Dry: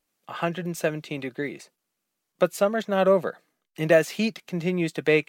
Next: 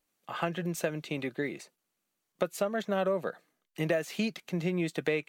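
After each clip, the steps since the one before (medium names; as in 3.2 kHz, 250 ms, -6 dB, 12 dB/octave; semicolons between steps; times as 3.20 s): band-stop 5.1 kHz, Q 22; compression 5:1, threshold -24 dBFS, peak gain reduction 11 dB; trim -2 dB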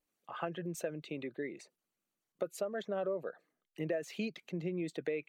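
resonances exaggerated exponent 1.5; trim -6.5 dB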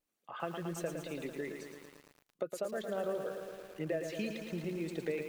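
bit-crushed delay 112 ms, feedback 80%, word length 9-bit, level -6.5 dB; trim -1 dB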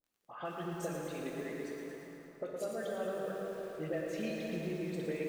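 phase dispersion highs, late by 58 ms, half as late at 2 kHz; crackle 16 per s -53 dBFS; plate-style reverb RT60 4.1 s, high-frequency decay 0.5×, DRR -1 dB; trim -3.5 dB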